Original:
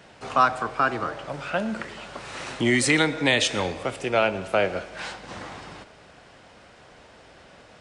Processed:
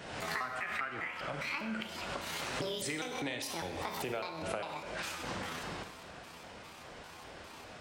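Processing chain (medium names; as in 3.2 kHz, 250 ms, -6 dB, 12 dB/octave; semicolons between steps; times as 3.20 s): pitch shift switched off and on +8.5 st, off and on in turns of 201 ms; time-frequency box 0.53–1.83 s, 1.2–3.4 kHz +7 dB; compression 10:1, threshold -36 dBFS, peak gain reduction 24 dB; Schroeder reverb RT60 0.78 s, combs from 32 ms, DRR 7 dB; swell ahead of each attack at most 45 dB/s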